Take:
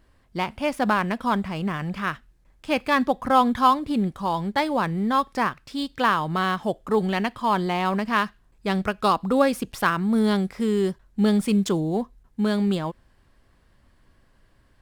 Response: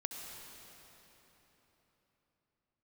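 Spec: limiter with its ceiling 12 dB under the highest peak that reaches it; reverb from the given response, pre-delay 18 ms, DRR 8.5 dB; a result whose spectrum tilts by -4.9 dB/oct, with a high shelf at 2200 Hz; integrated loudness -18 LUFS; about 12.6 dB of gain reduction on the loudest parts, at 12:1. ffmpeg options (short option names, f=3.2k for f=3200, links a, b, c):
-filter_complex "[0:a]highshelf=f=2.2k:g=9,acompressor=threshold=-23dB:ratio=12,alimiter=limit=-24dB:level=0:latency=1,asplit=2[a][b];[1:a]atrim=start_sample=2205,adelay=18[c];[b][c]afir=irnorm=-1:irlink=0,volume=-8.5dB[d];[a][d]amix=inputs=2:normalize=0,volume=15dB"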